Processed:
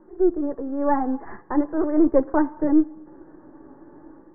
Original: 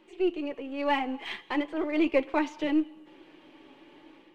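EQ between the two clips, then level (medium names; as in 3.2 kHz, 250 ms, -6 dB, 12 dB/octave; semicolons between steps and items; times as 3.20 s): steep low-pass 1.7 kHz 72 dB/octave; distance through air 450 m; bass shelf 170 Hz +10 dB; +6.5 dB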